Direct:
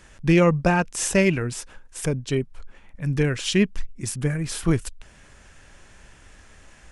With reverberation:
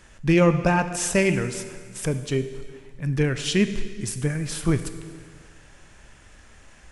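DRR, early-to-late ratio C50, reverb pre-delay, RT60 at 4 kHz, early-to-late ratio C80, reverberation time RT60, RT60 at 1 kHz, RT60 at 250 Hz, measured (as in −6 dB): 9.5 dB, 10.5 dB, 6 ms, 1.7 s, 11.5 dB, 1.8 s, 1.8 s, 1.8 s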